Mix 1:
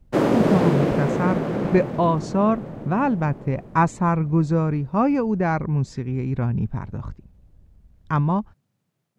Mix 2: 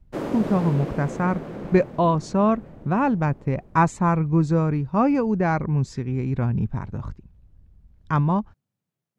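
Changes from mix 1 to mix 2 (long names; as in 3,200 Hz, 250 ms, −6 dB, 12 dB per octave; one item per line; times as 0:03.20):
background −10.0 dB
master: add high-shelf EQ 8,600 Hz +3.5 dB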